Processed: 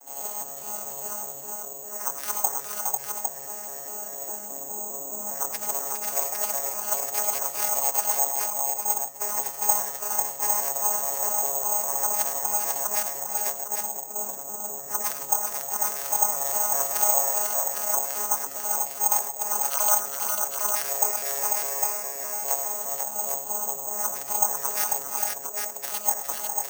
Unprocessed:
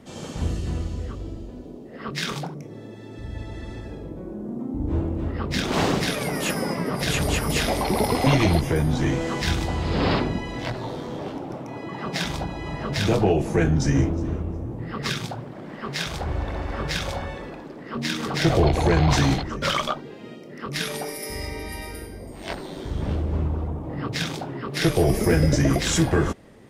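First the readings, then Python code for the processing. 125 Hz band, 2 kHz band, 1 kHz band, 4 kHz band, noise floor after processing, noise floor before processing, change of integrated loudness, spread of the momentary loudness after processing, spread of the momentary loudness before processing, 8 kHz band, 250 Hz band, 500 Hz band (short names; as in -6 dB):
under -30 dB, -9.0 dB, 0.0 dB, -11.0 dB, -38 dBFS, -40 dBFS, 0.0 dB, 9 LU, 16 LU, +12.0 dB, -25.5 dB, -8.5 dB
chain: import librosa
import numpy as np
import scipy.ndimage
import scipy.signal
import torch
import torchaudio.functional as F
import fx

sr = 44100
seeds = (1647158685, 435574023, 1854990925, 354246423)

p1 = fx.vocoder_arp(x, sr, chord='bare fifth', root=49, every_ms=204)
p2 = fx.over_compress(p1, sr, threshold_db=-33.0, ratio=-1.0)
p3 = fx.highpass_res(p2, sr, hz=800.0, q=3.6)
p4 = p3 + fx.echo_multitap(p3, sr, ms=(85, 105, 360, 409, 495, 805), db=(-14.5, -11.0, -15.5, -7.5, -4.0, -5.0), dry=0)
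p5 = (np.kron(scipy.signal.resample_poly(p4, 1, 6), np.eye(6)[0]) * 6)[:len(p4)]
y = p5 * 10.0 ** (-3.0 / 20.0)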